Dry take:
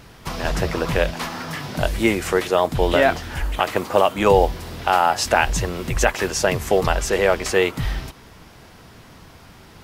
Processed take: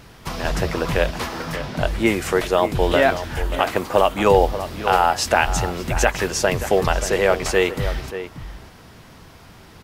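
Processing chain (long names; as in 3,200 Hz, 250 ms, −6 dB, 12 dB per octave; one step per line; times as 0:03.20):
0:01.55–0:02.05: high-shelf EQ 8,500 Hz → 5,400 Hz −10 dB
slap from a distant wall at 100 metres, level −11 dB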